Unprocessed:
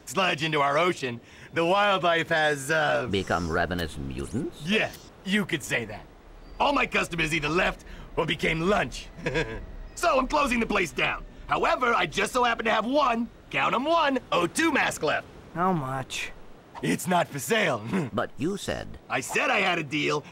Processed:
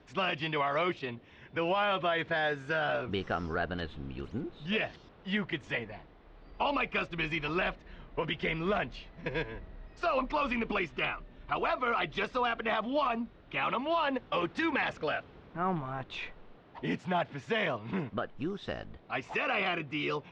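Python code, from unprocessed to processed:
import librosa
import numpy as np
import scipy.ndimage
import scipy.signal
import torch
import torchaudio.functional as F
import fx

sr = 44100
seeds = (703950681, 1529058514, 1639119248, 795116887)

y = scipy.signal.sosfilt(scipy.signal.butter(4, 4100.0, 'lowpass', fs=sr, output='sos'), x)
y = F.gain(torch.from_numpy(y), -7.0).numpy()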